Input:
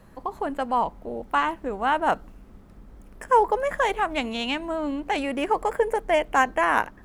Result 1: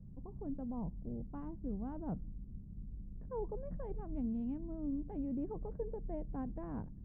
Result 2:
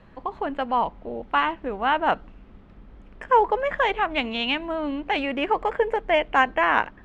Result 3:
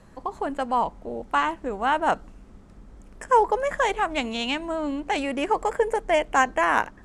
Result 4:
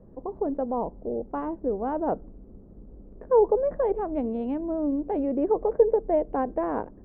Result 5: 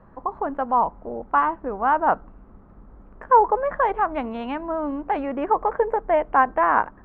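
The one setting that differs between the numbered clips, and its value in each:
synth low-pass, frequency: 150, 3100, 7900, 460, 1200 Hz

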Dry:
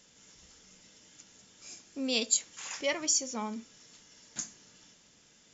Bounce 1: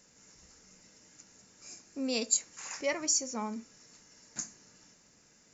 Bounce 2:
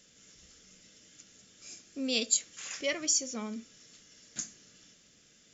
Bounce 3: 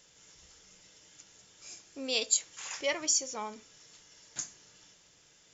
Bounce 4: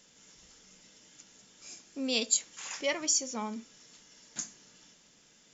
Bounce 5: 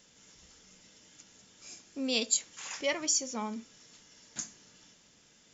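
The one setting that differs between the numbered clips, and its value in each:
bell, frequency: 3300, 910, 230, 87, 14000 Hz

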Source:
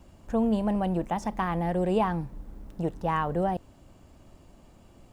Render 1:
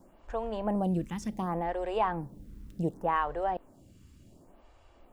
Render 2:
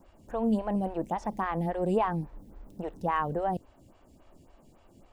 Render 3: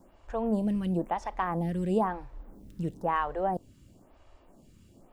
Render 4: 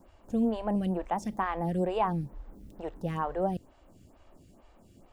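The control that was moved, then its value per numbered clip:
photocell phaser, rate: 0.68, 3.6, 1, 2.2 Hz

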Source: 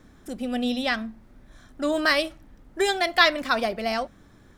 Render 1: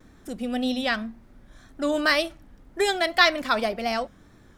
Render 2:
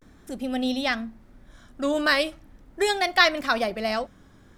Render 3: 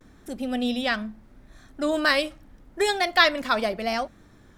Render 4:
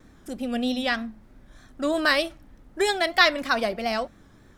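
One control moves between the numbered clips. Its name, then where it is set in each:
vibrato, rate: 1.9, 0.41, 0.78, 3.2 Hz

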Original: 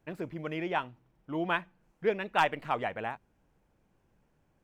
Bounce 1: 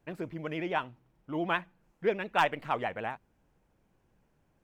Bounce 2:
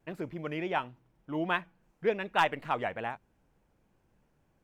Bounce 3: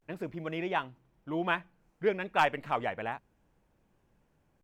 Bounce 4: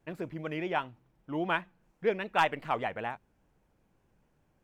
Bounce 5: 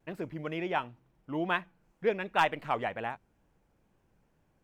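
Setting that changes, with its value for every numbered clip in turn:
vibrato, rate: 13, 3.4, 0.33, 5, 2.1 Hz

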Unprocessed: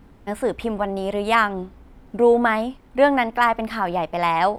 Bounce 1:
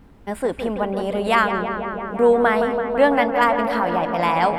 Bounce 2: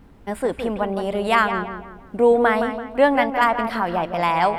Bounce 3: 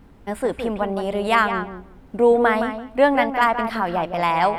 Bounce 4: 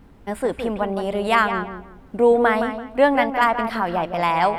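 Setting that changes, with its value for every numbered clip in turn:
darkening echo, feedback: 86, 41, 17, 28%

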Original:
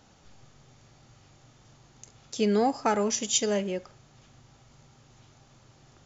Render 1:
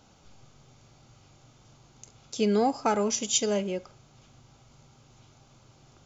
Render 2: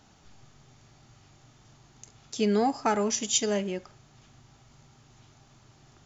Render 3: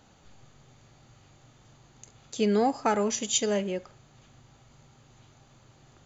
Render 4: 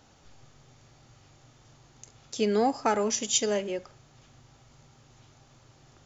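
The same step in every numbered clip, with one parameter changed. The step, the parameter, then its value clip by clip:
notch, frequency: 1800, 520, 5400, 190 Hz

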